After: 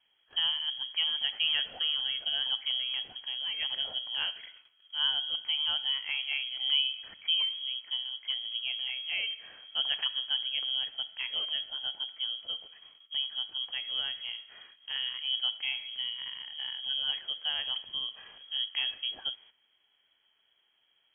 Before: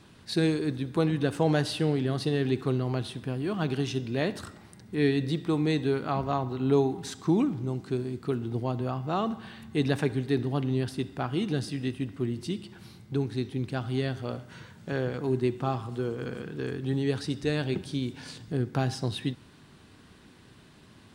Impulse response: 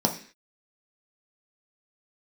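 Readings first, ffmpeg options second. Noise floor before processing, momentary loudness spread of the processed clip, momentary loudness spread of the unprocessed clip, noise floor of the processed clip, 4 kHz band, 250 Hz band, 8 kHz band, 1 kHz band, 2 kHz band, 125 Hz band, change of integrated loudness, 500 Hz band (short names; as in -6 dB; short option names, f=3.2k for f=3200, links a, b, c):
-54 dBFS, 9 LU, 9 LU, -72 dBFS, +14.5 dB, under -35 dB, under -30 dB, -14.5 dB, +0.5 dB, under -40 dB, -1.0 dB, -28.5 dB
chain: -af "lowpass=f=2.9k:t=q:w=0.5098,lowpass=f=2.9k:t=q:w=0.6013,lowpass=f=2.9k:t=q:w=0.9,lowpass=f=2.9k:t=q:w=2.563,afreqshift=-3400,agate=range=-12dB:threshold=-49dB:ratio=16:detection=peak,volume=-5dB"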